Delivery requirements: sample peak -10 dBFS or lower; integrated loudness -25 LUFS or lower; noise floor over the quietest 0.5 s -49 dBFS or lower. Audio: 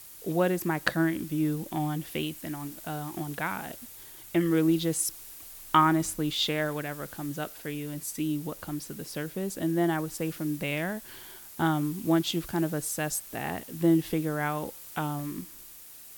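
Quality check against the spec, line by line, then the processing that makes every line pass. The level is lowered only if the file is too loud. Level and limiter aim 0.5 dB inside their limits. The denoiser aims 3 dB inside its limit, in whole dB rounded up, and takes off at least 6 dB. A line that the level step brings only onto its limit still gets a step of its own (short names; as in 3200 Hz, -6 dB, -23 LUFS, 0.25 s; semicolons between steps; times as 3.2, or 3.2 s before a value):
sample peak -6.0 dBFS: fail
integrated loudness -29.5 LUFS: OK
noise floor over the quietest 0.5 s -48 dBFS: fail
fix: denoiser 6 dB, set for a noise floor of -48 dBFS; limiter -10.5 dBFS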